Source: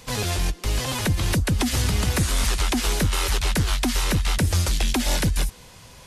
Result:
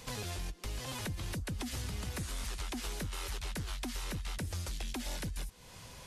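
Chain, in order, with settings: compressor 3:1, threshold -36 dBFS, peak gain reduction 14 dB; gain -4.5 dB

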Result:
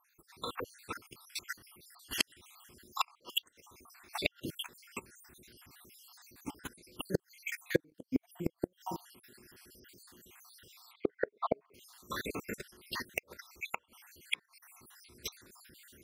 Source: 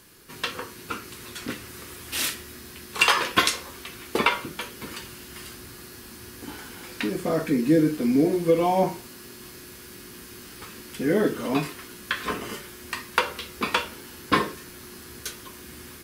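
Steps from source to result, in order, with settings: random spectral dropouts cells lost 68%; level quantiser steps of 14 dB; 10.93–11.74 speaker cabinet 260–3300 Hz, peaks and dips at 290 Hz -10 dB, 410 Hz +10 dB, 610 Hz +8 dB, 1100 Hz +6 dB, 1900 Hz +4 dB, 2700 Hz -8 dB; flipped gate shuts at -22 dBFS, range -30 dB; upward expander 1.5:1, over -57 dBFS; gain +9 dB

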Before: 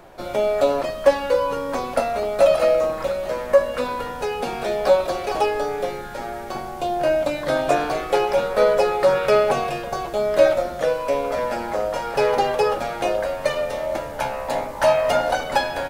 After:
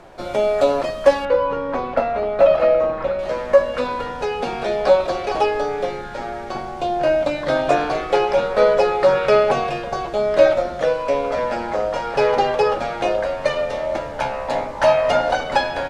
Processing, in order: LPF 8700 Hz 12 dB/oct, from 1.25 s 2500 Hz, from 3.19 s 5700 Hz; gain +2 dB

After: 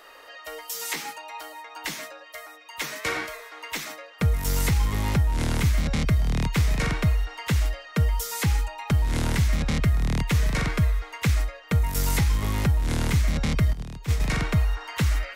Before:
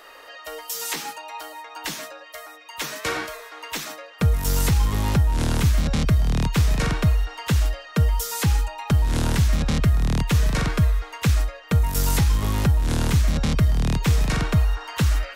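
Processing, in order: 13.73–14.2 gate -17 dBFS, range -13 dB; dynamic EQ 2100 Hz, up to +7 dB, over -50 dBFS, Q 4.8; gain -3 dB

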